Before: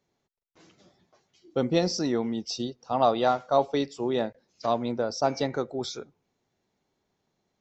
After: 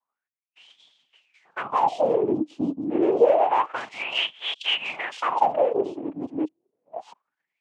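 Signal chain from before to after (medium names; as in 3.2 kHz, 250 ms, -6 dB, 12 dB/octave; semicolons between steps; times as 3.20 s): chunks repeated in reverse 648 ms, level -7 dB; spectral noise reduction 15 dB; in parallel at -5 dB: sine folder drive 12 dB, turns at -8.5 dBFS; on the sum: noise-vocoded speech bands 4; dynamic bell 2.9 kHz, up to +6 dB, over -38 dBFS, Q 2.3; wah-wah 0.28 Hz 280–3400 Hz, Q 9.2; trim +6.5 dB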